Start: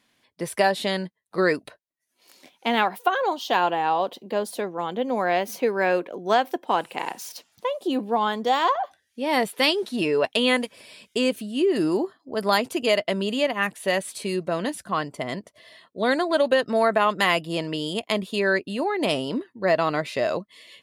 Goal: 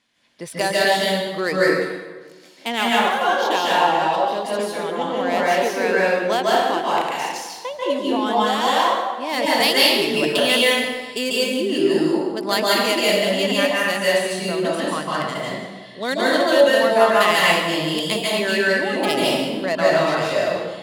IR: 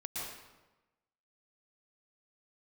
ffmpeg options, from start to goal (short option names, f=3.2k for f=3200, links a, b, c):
-filter_complex "[0:a]adynamicsmooth=sensitivity=3:basefreq=4.8k,crystalizer=i=3.5:c=0[a];[1:a]atrim=start_sample=2205,asetrate=34839,aresample=44100[b];[a][b]afir=irnorm=-1:irlink=0"